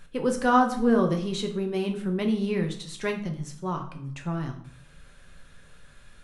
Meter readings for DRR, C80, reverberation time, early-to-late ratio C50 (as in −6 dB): 3.5 dB, 13.0 dB, 0.60 s, 10.0 dB